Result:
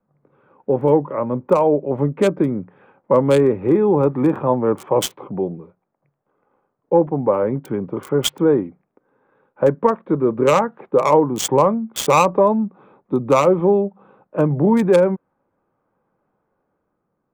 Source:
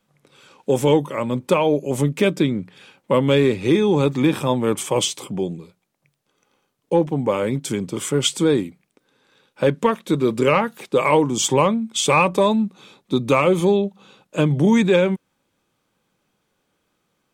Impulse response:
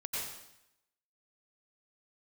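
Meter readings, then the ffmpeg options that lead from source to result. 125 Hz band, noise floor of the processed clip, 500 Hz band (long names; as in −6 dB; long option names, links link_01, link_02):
−1.0 dB, −74 dBFS, +3.0 dB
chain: -filter_complex "[0:a]acrossover=split=410|1400[link_01][link_02][link_03];[link_02]dynaudnorm=framelen=120:gausssize=13:maxgain=6.5dB[link_04];[link_03]acrusher=bits=2:mix=0:aa=0.5[link_05];[link_01][link_04][link_05]amix=inputs=3:normalize=0,volume=-1dB"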